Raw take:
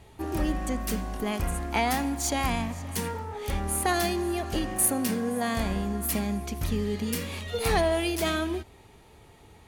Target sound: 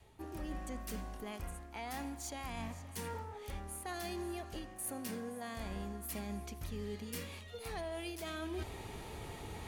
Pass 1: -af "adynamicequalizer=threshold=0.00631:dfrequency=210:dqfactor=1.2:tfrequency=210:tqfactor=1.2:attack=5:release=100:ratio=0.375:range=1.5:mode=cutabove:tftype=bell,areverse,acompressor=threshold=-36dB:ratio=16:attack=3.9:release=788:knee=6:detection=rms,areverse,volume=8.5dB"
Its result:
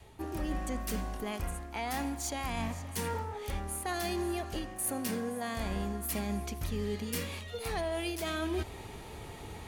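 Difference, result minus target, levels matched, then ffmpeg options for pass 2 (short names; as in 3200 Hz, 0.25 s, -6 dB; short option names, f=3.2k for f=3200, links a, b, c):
compressor: peak gain reduction -7.5 dB
-af "adynamicequalizer=threshold=0.00631:dfrequency=210:dqfactor=1.2:tfrequency=210:tqfactor=1.2:attack=5:release=100:ratio=0.375:range=1.5:mode=cutabove:tftype=bell,areverse,acompressor=threshold=-44dB:ratio=16:attack=3.9:release=788:knee=6:detection=rms,areverse,volume=8.5dB"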